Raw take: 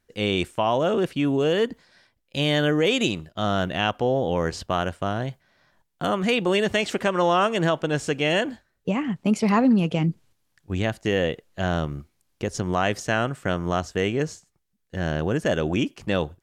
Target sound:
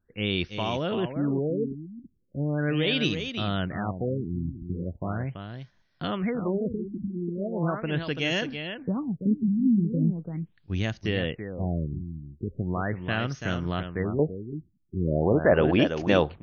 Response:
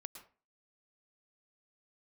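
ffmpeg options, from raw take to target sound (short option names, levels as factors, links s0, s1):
-af "asetnsamples=n=441:p=0,asendcmd='14.19 equalizer g 4',equalizer=f=730:t=o:w=2.5:g=-9.5,aecho=1:1:334:0.398,afftfilt=real='re*lt(b*sr/1024,340*pow(6800/340,0.5+0.5*sin(2*PI*0.39*pts/sr)))':imag='im*lt(b*sr/1024,340*pow(6800/340,0.5+0.5*sin(2*PI*0.39*pts/sr)))':win_size=1024:overlap=0.75"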